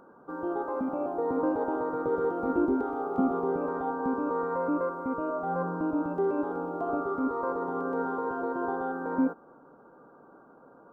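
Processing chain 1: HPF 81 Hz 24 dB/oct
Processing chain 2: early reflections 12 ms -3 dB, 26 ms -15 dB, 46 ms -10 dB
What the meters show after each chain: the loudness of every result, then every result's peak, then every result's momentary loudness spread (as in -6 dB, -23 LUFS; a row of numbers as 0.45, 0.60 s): -30.5, -28.0 LUFS; -14.5, -11.0 dBFS; 4, 5 LU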